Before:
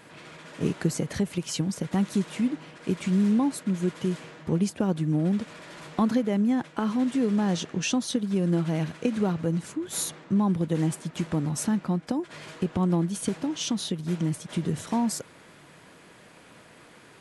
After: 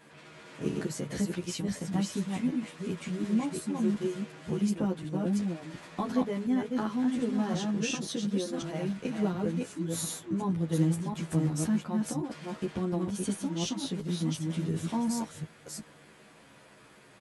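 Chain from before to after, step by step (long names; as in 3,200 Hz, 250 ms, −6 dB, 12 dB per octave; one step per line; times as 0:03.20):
delay that plays each chunk backwards 359 ms, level −3 dB
double-tracking delay 19 ms −13 dB
barber-pole flanger 10.7 ms −0.25 Hz
level −3 dB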